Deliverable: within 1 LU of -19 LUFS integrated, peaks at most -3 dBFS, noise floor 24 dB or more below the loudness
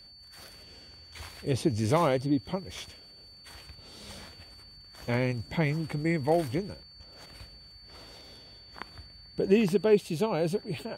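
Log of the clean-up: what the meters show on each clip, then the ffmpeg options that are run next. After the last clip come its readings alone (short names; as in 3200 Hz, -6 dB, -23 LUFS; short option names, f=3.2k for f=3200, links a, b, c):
steady tone 4500 Hz; tone level -50 dBFS; loudness -28.5 LUFS; peak -11.0 dBFS; loudness target -19.0 LUFS
-> -af "bandreject=f=4.5k:w=30"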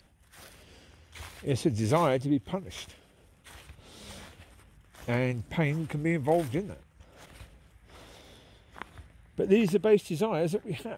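steady tone none; loudness -28.5 LUFS; peak -11.0 dBFS; loudness target -19.0 LUFS
-> -af "volume=9.5dB,alimiter=limit=-3dB:level=0:latency=1"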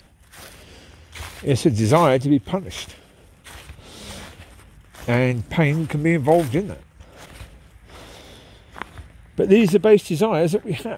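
loudness -19.0 LUFS; peak -3.0 dBFS; noise floor -51 dBFS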